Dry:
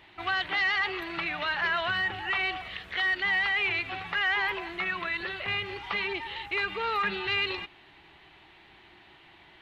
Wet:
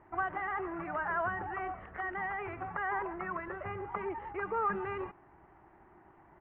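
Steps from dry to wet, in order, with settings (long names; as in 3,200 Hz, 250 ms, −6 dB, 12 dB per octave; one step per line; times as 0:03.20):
tempo change 1.5×
inverse Chebyshev low-pass filter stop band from 4,500 Hz, stop band 60 dB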